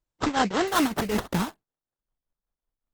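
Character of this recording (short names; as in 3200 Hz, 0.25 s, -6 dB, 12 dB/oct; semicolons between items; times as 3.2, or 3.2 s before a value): aliases and images of a low sample rate 2400 Hz, jitter 20%; tremolo triangle 5.3 Hz, depth 85%; Opus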